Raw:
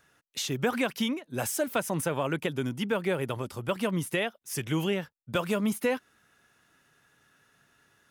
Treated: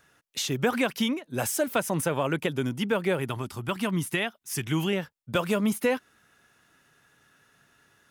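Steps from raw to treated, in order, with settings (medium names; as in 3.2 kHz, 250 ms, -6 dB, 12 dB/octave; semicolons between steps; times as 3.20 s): 3.19–4.93 s: peaking EQ 520 Hz -12 dB 0.4 oct; trim +2.5 dB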